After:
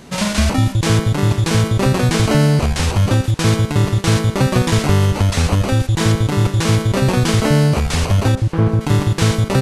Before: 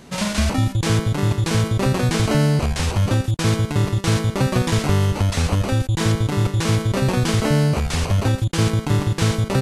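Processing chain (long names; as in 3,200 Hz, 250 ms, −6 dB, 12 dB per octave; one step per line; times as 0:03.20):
0:08.35–0:08.81: low-pass filter 1,200 Hz 12 dB per octave
on a send: feedback echo with a high-pass in the loop 471 ms, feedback 50%, level −19 dB
on the sum: level +4 dB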